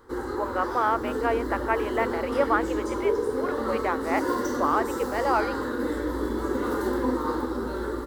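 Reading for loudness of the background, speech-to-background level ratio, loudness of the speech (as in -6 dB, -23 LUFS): -29.0 LUFS, 0.5 dB, -28.5 LUFS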